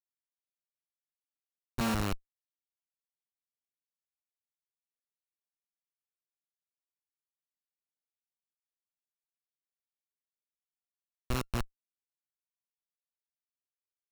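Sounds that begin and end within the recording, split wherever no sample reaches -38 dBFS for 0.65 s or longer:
1.78–2.15 s
11.30–11.63 s

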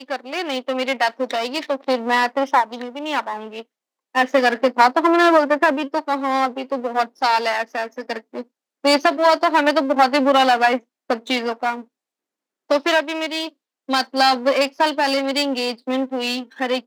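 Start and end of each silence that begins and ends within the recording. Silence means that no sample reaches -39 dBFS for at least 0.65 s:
11.83–12.70 s

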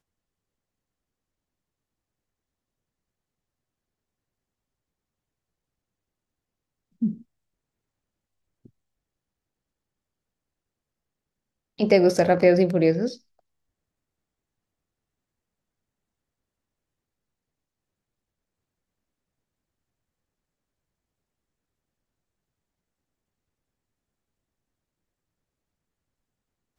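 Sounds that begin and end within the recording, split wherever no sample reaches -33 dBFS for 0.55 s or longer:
7.02–7.13 s
11.79–13.14 s

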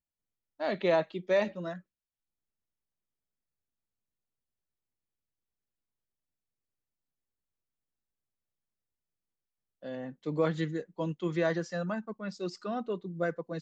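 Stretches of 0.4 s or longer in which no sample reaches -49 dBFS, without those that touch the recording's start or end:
1.80–9.82 s

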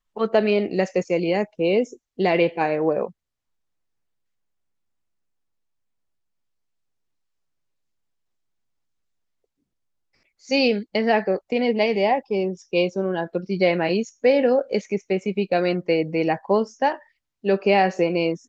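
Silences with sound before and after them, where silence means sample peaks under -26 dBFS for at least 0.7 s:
3.07–10.51 s

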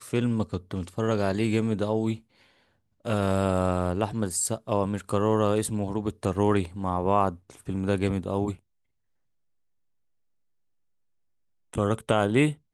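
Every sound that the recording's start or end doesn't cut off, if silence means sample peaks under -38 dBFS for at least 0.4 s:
3.05–8.55 s

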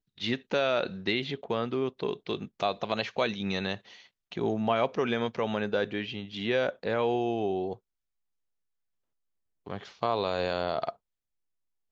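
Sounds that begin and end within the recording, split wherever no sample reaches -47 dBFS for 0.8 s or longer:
9.66–10.93 s

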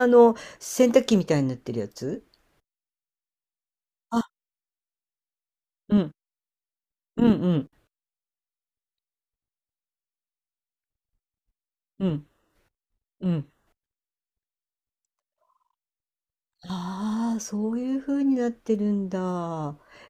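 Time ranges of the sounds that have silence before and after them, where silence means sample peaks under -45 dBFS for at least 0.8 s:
4.12–4.26 s
5.89–6.11 s
7.17–7.66 s
12.00–12.23 s
13.21–13.44 s

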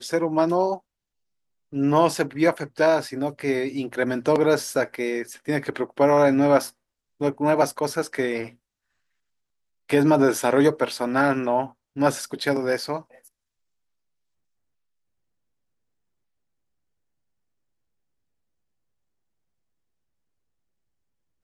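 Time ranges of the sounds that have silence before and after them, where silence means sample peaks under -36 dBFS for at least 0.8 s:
1.73–8.49 s
9.90–13.00 s

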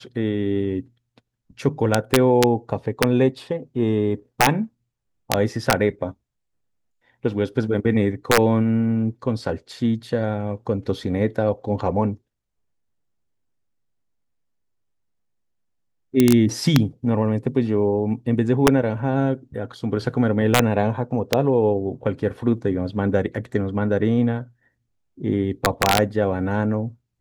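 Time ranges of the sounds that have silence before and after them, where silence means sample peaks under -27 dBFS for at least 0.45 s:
1.60–4.64 s
5.30–6.10 s
7.25–12.14 s
16.14–24.42 s

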